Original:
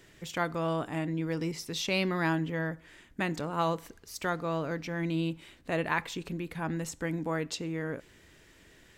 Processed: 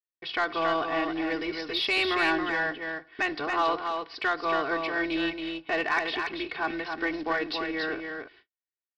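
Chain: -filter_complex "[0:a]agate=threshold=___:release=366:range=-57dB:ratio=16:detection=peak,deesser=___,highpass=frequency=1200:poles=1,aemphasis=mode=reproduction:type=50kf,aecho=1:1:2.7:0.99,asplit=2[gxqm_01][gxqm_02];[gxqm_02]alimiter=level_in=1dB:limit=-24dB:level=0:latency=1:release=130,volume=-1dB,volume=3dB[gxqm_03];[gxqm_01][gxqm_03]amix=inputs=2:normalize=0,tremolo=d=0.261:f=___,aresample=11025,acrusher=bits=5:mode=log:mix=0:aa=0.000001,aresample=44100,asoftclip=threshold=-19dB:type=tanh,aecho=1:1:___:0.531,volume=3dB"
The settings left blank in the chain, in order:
-47dB, 0.75, 290, 277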